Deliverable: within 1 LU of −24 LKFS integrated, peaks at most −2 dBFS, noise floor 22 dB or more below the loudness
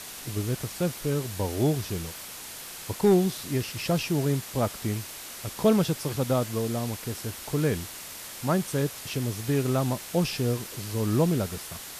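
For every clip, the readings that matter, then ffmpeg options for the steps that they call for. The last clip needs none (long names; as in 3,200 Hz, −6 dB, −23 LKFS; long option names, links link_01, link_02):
background noise floor −41 dBFS; target noise floor −50 dBFS; integrated loudness −28.0 LKFS; sample peak −11.0 dBFS; target loudness −24.0 LKFS
→ -af "afftdn=noise_reduction=9:noise_floor=-41"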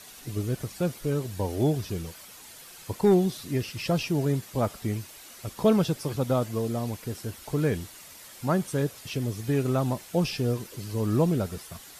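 background noise floor −48 dBFS; target noise floor −50 dBFS
→ -af "afftdn=noise_reduction=6:noise_floor=-48"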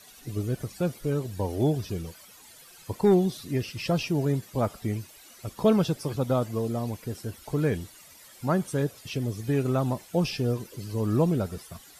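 background noise floor −51 dBFS; integrated loudness −28.0 LKFS; sample peak −11.5 dBFS; target loudness −24.0 LKFS
→ -af "volume=4dB"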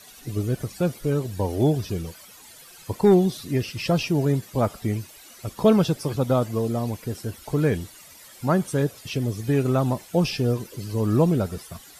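integrated loudness −24.0 LKFS; sample peak −7.5 dBFS; background noise floor −47 dBFS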